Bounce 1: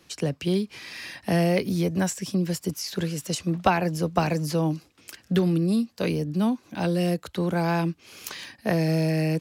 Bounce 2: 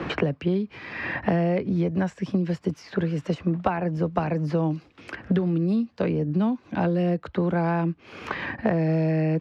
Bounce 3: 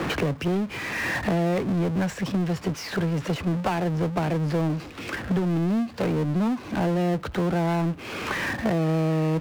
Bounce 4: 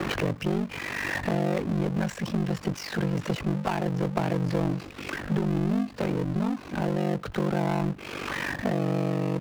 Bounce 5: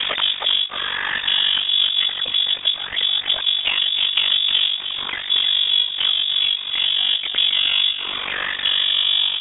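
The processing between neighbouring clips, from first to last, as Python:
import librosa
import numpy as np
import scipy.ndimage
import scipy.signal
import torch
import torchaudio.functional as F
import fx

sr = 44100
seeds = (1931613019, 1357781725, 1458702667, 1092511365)

y1 = scipy.signal.sosfilt(scipy.signal.butter(2, 1900.0, 'lowpass', fs=sr, output='sos'), x)
y1 = fx.band_squash(y1, sr, depth_pct=100)
y2 = fx.power_curve(y1, sr, exponent=0.5)
y2 = y2 * librosa.db_to_amplitude(-7.0)
y3 = fx.rider(y2, sr, range_db=10, speed_s=2.0)
y3 = y3 * np.sin(2.0 * np.pi * 24.0 * np.arange(len(y3)) / sr)
y4 = y3 + 10.0 ** (-8.5 / 20.0) * np.pad(y3, (int(310 * sr / 1000.0), 0))[:len(y3)]
y4 = fx.freq_invert(y4, sr, carrier_hz=3600)
y4 = y4 * librosa.db_to_amplitude(7.0)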